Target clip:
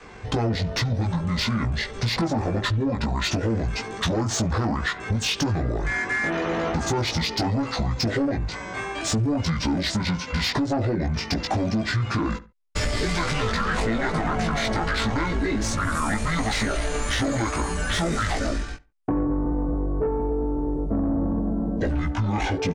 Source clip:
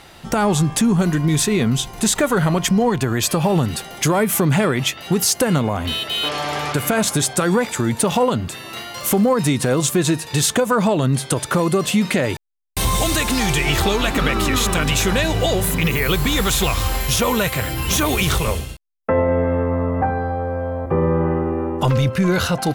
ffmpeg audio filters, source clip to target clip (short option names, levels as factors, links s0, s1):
-filter_complex "[0:a]asplit=2[s0][s1];[s1]adelay=71,lowpass=f=3300:p=1,volume=0.112,asplit=2[s2][s3];[s3]adelay=71,lowpass=f=3300:p=1,volume=0.26[s4];[s0][s2][s4]amix=inputs=3:normalize=0,adynamicequalizer=threshold=0.0316:dfrequency=180:dqfactor=0.99:tfrequency=180:tqfactor=0.99:attack=5:release=100:ratio=0.375:range=3:mode=cutabove:tftype=bell,asetrate=24750,aresample=44100,atempo=1.7818,asplit=2[s5][s6];[s6]adelay=18,volume=0.708[s7];[s5][s7]amix=inputs=2:normalize=0,asoftclip=type=tanh:threshold=0.237,highshelf=f=4400:g=-7,acompressor=threshold=0.0891:ratio=6"